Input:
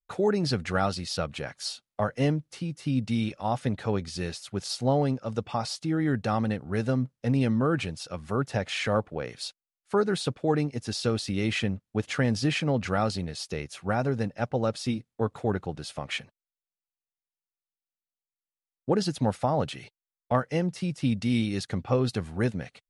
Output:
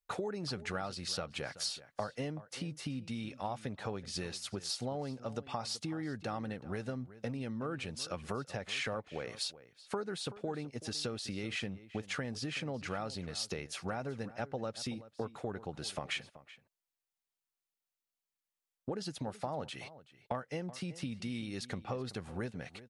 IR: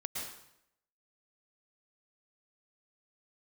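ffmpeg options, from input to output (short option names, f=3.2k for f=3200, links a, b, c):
-filter_complex "[0:a]acompressor=threshold=-35dB:ratio=10,lowshelf=f=270:g=-5.5,asplit=2[a][b];[b]adelay=379,volume=-16dB,highshelf=f=4k:g=-8.53[c];[a][c]amix=inputs=2:normalize=0,volume=2dB"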